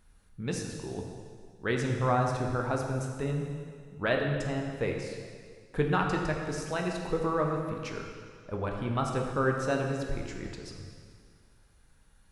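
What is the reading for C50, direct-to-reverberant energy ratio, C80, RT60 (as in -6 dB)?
3.0 dB, 1.0 dB, 4.5 dB, 2.0 s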